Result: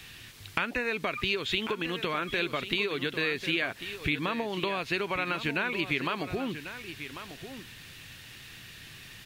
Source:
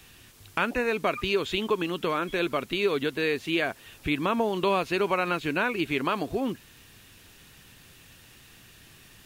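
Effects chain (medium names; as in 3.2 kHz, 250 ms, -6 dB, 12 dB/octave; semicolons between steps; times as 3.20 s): compression, threshold -30 dBFS, peak gain reduction 10 dB; graphic EQ 125/2000/4000 Hz +5/+7/+6 dB; on a send: delay 1094 ms -11.5 dB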